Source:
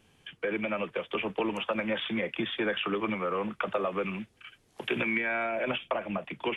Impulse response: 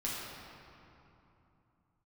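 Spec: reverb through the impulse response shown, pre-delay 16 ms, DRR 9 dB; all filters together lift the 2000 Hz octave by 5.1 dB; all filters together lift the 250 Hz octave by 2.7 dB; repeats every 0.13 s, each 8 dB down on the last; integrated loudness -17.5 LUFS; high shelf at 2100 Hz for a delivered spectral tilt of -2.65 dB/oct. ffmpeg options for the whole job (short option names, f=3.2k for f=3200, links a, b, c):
-filter_complex "[0:a]equalizer=f=250:t=o:g=3.5,equalizer=f=2k:t=o:g=8.5,highshelf=f=2.1k:g=-3.5,aecho=1:1:130|260|390|520|650:0.398|0.159|0.0637|0.0255|0.0102,asplit=2[a][b];[1:a]atrim=start_sample=2205,adelay=16[c];[b][c]afir=irnorm=-1:irlink=0,volume=-13.5dB[d];[a][d]amix=inputs=2:normalize=0,volume=9.5dB"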